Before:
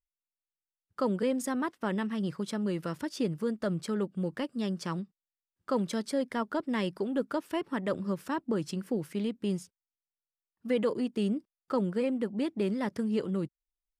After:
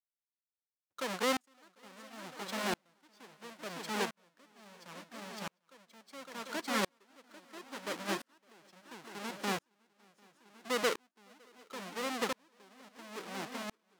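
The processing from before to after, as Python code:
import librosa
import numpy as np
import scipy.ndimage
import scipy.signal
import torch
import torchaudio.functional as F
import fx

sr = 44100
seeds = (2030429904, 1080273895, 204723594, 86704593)

p1 = fx.halfwave_hold(x, sr)
p2 = fx.weighting(p1, sr, curve='A')
p3 = p2 + fx.echo_swing(p2, sr, ms=746, ratio=3, feedback_pct=36, wet_db=-7.5, dry=0)
y = fx.tremolo_decay(p3, sr, direction='swelling', hz=0.73, depth_db=40)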